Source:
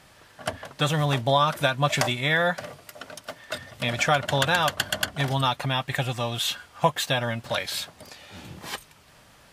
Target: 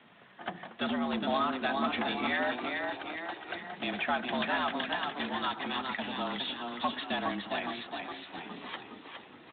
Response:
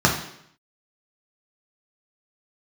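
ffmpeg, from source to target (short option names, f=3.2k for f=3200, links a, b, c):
-filter_complex "[0:a]asplit=3[a][b][c];[a]afade=t=out:st=5.1:d=0.02[d];[b]lowshelf=f=320:g=-7.5,afade=t=in:st=5.1:d=0.02,afade=t=out:st=6.12:d=0.02[e];[c]afade=t=in:st=6.12:d=0.02[f];[d][e][f]amix=inputs=3:normalize=0,asplit=3[g][h][i];[g]afade=t=out:st=7.47:d=0.02[j];[h]bandreject=f=60:t=h:w=6,bandreject=f=120:t=h:w=6,bandreject=f=180:t=h:w=6,afade=t=in:st=7.47:d=0.02,afade=t=out:st=8.56:d=0.02[k];[i]afade=t=in:st=8.56:d=0.02[l];[j][k][l]amix=inputs=3:normalize=0,asplit=2[m][n];[n]acompressor=threshold=-35dB:ratio=6,volume=-2.5dB[o];[m][o]amix=inputs=2:normalize=0,afreqshift=89,asplit=8[p][q][r][s][t][u][v][w];[q]adelay=413,afreqshift=33,volume=-5.5dB[x];[r]adelay=826,afreqshift=66,volume=-11.2dB[y];[s]adelay=1239,afreqshift=99,volume=-16.9dB[z];[t]adelay=1652,afreqshift=132,volume=-22.5dB[aa];[u]adelay=2065,afreqshift=165,volume=-28.2dB[ab];[v]adelay=2478,afreqshift=198,volume=-33.9dB[ac];[w]adelay=2891,afreqshift=231,volume=-39.6dB[ad];[p][x][y][z][aa][ab][ac][ad]amix=inputs=8:normalize=0,asoftclip=type=tanh:threshold=-14.5dB,acrossover=split=160|3000[ae][af][ag];[ae]acompressor=threshold=-32dB:ratio=2.5[ah];[ah][af][ag]amix=inputs=3:normalize=0,asplit=2[ai][aj];[1:a]atrim=start_sample=2205,adelay=79[ak];[aj][ak]afir=irnorm=-1:irlink=0,volume=-38dB[al];[ai][al]amix=inputs=2:normalize=0,volume=-8dB" -ar 8000 -c:a libspeex -b:a 15k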